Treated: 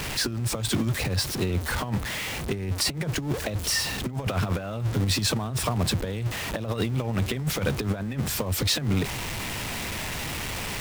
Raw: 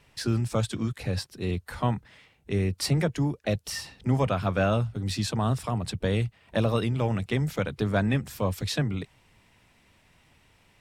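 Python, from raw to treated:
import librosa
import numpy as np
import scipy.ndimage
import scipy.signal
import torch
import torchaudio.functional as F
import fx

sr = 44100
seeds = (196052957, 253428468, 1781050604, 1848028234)

y = x + 0.5 * 10.0 ** (-31.5 / 20.0) * np.sign(x)
y = fx.over_compress(y, sr, threshold_db=-27.0, ratio=-0.5)
y = y * librosa.db_to_amplitude(2.0)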